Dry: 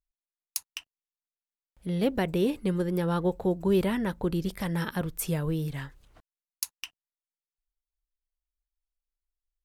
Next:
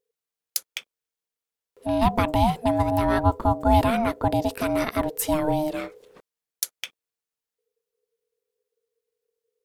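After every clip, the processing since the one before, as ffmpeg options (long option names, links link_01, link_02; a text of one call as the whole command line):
ffmpeg -i in.wav -af "aeval=exprs='val(0)*sin(2*PI*460*n/s)':channel_layout=same,volume=8.5dB" out.wav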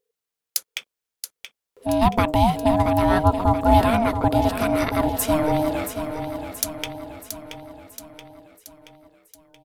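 ffmpeg -i in.wav -af "aecho=1:1:677|1354|2031|2708|3385|4062:0.355|0.195|0.107|0.059|0.0325|0.0179,volume=2.5dB" out.wav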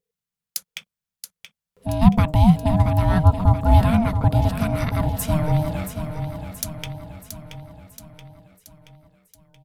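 ffmpeg -i in.wav -af "lowshelf=frequency=240:width_type=q:width=3:gain=9.5,volume=-4dB" out.wav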